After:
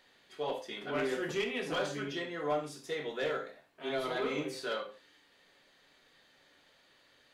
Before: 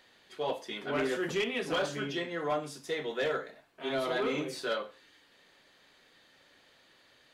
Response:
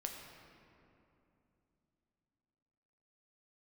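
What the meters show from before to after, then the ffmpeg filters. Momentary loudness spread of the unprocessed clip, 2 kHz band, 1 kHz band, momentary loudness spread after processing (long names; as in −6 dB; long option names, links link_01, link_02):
6 LU, −2.5 dB, −2.0 dB, 6 LU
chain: -filter_complex "[1:a]atrim=start_sample=2205,atrim=end_sample=3969[link_01];[0:a][link_01]afir=irnorm=-1:irlink=0"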